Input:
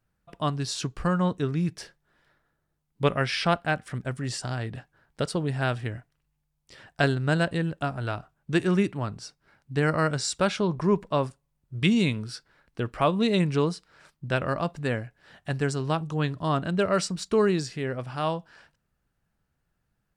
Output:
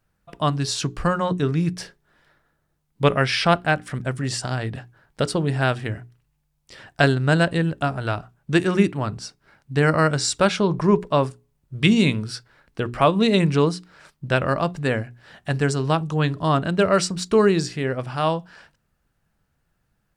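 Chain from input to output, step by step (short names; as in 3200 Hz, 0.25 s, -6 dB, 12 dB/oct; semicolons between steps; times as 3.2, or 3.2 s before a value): notches 60/120/180/240/300/360/420 Hz; gain +6 dB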